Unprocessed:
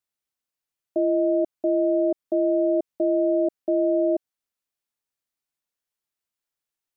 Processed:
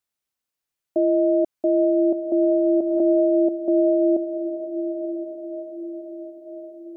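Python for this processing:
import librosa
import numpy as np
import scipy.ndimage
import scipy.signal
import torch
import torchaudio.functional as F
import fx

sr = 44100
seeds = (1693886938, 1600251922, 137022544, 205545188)

y = fx.echo_diffused(x, sr, ms=961, feedback_pct=52, wet_db=-9.0)
y = fx.pre_swell(y, sr, db_per_s=36.0, at=(2.43, 3.2))
y = F.gain(torch.from_numpy(y), 2.5).numpy()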